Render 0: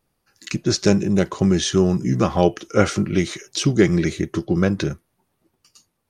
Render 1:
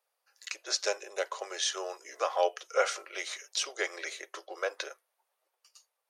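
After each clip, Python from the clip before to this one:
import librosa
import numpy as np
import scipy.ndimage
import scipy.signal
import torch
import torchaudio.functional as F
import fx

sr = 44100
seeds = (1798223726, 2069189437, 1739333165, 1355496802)

y = scipy.signal.sosfilt(scipy.signal.butter(8, 490.0, 'highpass', fs=sr, output='sos'), x)
y = F.gain(torch.from_numpy(y), -6.5).numpy()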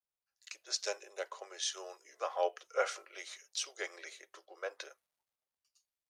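y = fx.dmg_crackle(x, sr, seeds[0], per_s=340.0, level_db=-62.0)
y = fx.band_widen(y, sr, depth_pct=40)
y = F.gain(torch.from_numpy(y), -8.0).numpy()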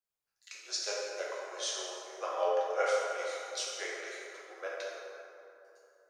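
y = fx.rev_plate(x, sr, seeds[1], rt60_s=2.9, hf_ratio=0.45, predelay_ms=0, drr_db=-5.5)
y = F.gain(torch.from_numpy(y), -2.5).numpy()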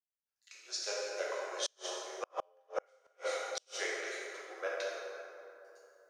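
y = fx.fade_in_head(x, sr, length_s=1.43)
y = fx.gate_flip(y, sr, shuts_db=-25.0, range_db=-39)
y = F.gain(torch.from_numpy(y), 2.0).numpy()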